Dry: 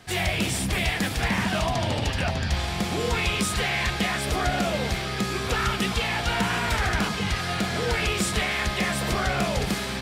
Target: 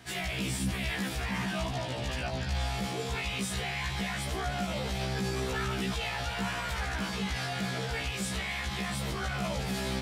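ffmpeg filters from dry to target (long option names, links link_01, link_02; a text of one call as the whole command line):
ffmpeg -i in.wav -af "alimiter=limit=-23dB:level=0:latency=1:release=32,afftfilt=real='re*1.73*eq(mod(b,3),0)':imag='im*1.73*eq(mod(b,3),0)':win_size=2048:overlap=0.75" out.wav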